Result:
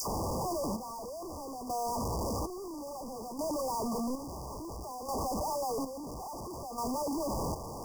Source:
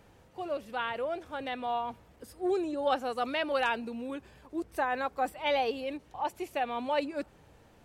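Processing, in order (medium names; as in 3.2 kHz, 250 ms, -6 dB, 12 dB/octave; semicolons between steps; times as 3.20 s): one-bit delta coder 32 kbps, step -26.5 dBFS; resonant high shelf 1.6 kHz -13.5 dB, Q 1.5; phase dispersion lows, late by 77 ms, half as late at 1.5 kHz; power-law waveshaper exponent 0.35; saturation -36 dBFS, distortion -10 dB; square tremolo 0.59 Hz, depth 60%, duty 45%; brick-wall FIR band-stop 1.2–4.6 kHz; trim +3.5 dB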